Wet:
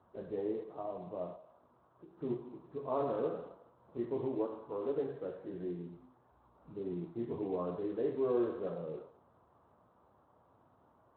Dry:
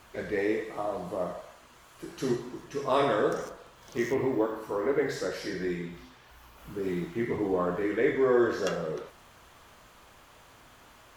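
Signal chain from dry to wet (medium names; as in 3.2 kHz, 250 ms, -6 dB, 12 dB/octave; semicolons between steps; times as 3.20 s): low-pass 1.1 kHz 24 dB/octave; 1.35–2.19 s: compression 2.5:1, threshold -47 dBFS, peak gain reduction 7.5 dB; thinning echo 209 ms, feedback 17%, high-pass 230 Hz, level -24 dB; trim -8.5 dB; Speex 21 kbps 16 kHz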